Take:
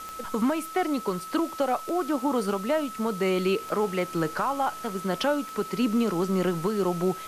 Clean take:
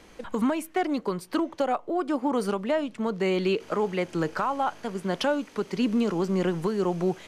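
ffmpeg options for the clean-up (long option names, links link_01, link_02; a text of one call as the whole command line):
ffmpeg -i in.wav -af "adeclick=threshold=4,bandreject=frequency=1300:width=30,afwtdn=0.005" out.wav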